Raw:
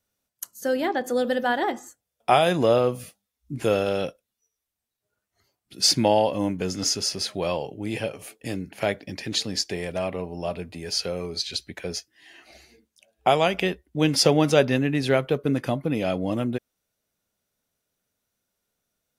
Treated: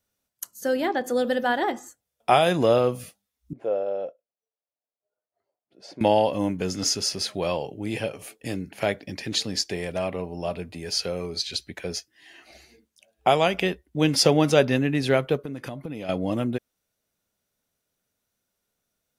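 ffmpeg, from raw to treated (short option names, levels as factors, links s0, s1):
-filter_complex "[0:a]asettb=1/sr,asplit=3[s0][s1][s2];[s0]atrim=end=3.534[s3];[s1]atrim=start=3.53:end=6.01,asetpts=PTS-STARTPTS,afade=t=in:d=0.004:c=qsin,afade=t=out:st=2.476:d=0.004:c=qsin,bandpass=f=600:t=q:w=2.8[s4];[s2]atrim=start=6.006[s5];[s3][s4]acrossfade=d=0.004:c1=hsin:c2=qsin[s6];[s6][s5]acrossfade=d=0.004:c1=qsin:c2=hsin,asettb=1/sr,asplit=3[s7][s8][s9];[s7]atrim=end=15.364[s10];[s8]atrim=start=15.36:end=16.09,asetpts=PTS-STARTPTS,afade=t=in:d=0.004:c=qsin,afade=t=out:st=0.726:d=0.004:c=qsin,acompressor=threshold=0.0316:ratio=6:attack=3.2:release=140:knee=1:detection=peak[s11];[s9]atrim=start=16.086[s12];[s10][s11]acrossfade=d=0.004:c1=hsin:c2=qsin[s13];[s13][s12]acrossfade=d=0.004:c1=qsin:c2=hsin"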